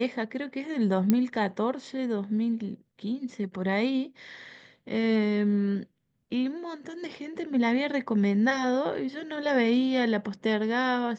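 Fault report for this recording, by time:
1.10 s: pop -10 dBFS

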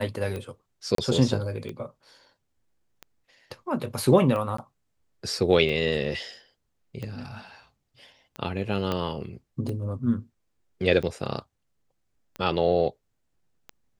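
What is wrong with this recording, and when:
tick 45 rpm -22 dBFS
0.95–0.98 s: dropout 33 ms
4.57–4.58 s: dropout 14 ms
8.92 s: pop -15 dBFS

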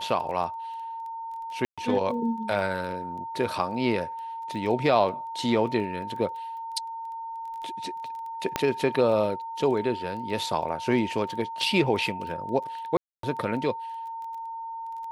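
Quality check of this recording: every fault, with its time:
crackle 12 per s -36 dBFS
whine 910 Hz -33 dBFS
1.65–1.78 s: dropout 126 ms
8.56 s: pop -9 dBFS
12.97–13.23 s: dropout 263 ms

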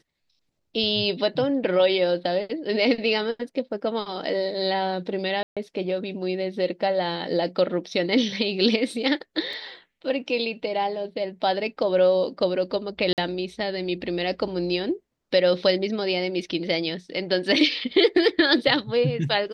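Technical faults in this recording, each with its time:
5.43–5.57 s: dropout 136 ms
9.53 s: dropout 2.9 ms
13.13–13.18 s: dropout 48 ms

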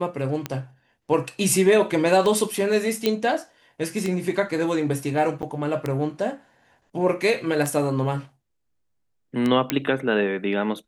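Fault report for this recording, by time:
tick 33 1/3 rpm -12 dBFS
3.06 s: pop -7 dBFS
5.42–5.43 s: dropout 9.1 ms
9.70 s: pop -5 dBFS

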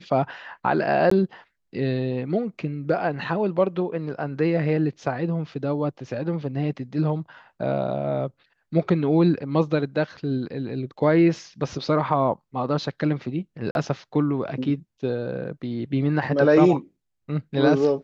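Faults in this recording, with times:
1.10–1.11 s: dropout 14 ms
13.71–13.75 s: dropout 41 ms

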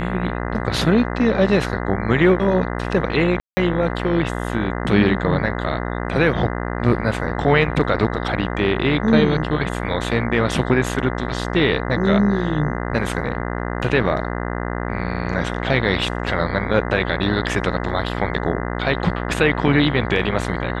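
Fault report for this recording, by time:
buzz 60 Hz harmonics 34 -25 dBFS
3.40–3.57 s: dropout 170 ms

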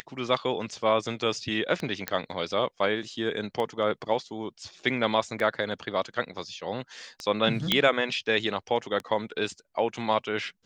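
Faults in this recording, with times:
tick 33 1/3 rpm -19 dBFS
2.08 s: pop -11 dBFS
7.72 s: pop -7 dBFS

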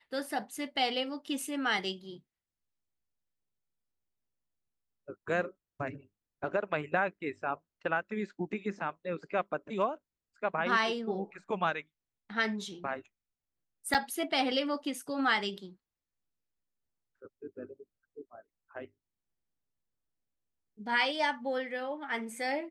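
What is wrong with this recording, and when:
13.94–13.95 s: dropout 7.3 ms

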